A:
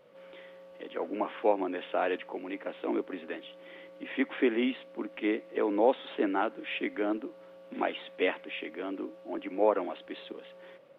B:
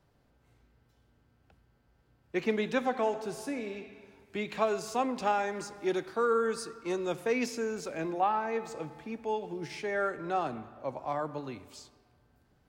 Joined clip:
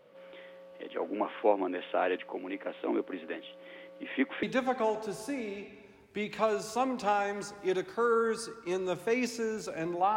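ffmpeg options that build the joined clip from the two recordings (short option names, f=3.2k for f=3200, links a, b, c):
-filter_complex "[0:a]apad=whole_dur=10.16,atrim=end=10.16,atrim=end=4.432[a];[1:a]atrim=start=2.618:end=8.35[b];[a][b]acrossfade=d=0.004:c1=hsin:c2=hsin"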